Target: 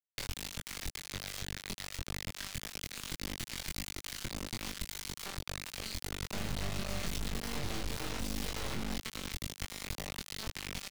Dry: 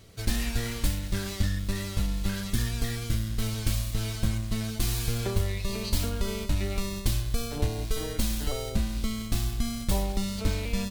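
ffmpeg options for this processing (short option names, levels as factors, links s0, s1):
-filter_complex "[0:a]asplit=2[s0][s1];[s1]adelay=244,lowpass=f=1100:p=1,volume=0.188,asplit=2[s2][s3];[s3]adelay=244,lowpass=f=1100:p=1,volume=0.4,asplit=2[s4][s5];[s5]adelay=244,lowpass=f=1100:p=1,volume=0.4,asplit=2[s6][s7];[s7]adelay=244,lowpass=f=1100:p=1,volume=0.4[s8];[s0][s2][s4][s6][s8]amix=inputs=5:normalize=0,asoftclip=type=tanh:threshold=0.119,aeval=exprs='val(0)+0.00355*sin(2*PI*2100*n/s)':c=same,acompressor=threshold=0.0158:ratio=16,asettb=1/sr,asplit=3[s9][s10][s11];[s9]atrim=end=6.334[s12];[s10]atrim=start=6.33:end=8.95,asetpts=PTS-STARTPTS,afade=t=in:d=0.004:c=qsin,afade=t=out:st=2.616:d=0.004:c=qsin,equalizer=f=200:w=0.37:g=11[s13];[s11]atrim=start=8.946[s14];[s12][s13]acrossfade=d=0.004:c1=hsin:c2=qsin[s15];[s15][s14]acrossfade=d=0.004:c1=qsin:c2=hsin,bandreject=f=60:t=h:w=6,bandreject=f=120:t=h:w=6,bandreject=f=180:t=h:w=6,bandreject=f=240:t=h:w=6,bandreject=f=300:t=h:w=6,bandreject=f=360:t=h:w=6,acrusher=bits=3:dc=4:mix=0:aa=0.000001,equalizer=f=3800:w=0.38:g=8,asplit=2[s16][s17];[s17]adelay=22,volume=0.794[s18];[s16][s18]amix=inputs=2:normalize=0,alimiter=level_in=1.78:limit=0.0631:level=0:latency=1:release=109,volume=0.562,acrossover=split=220[s19][s20];[s20]acompressor=threshold=0.00562:ratio=2.5[s21];[s19][s21]amix=inputs=2:normalize=0,volume=2.11"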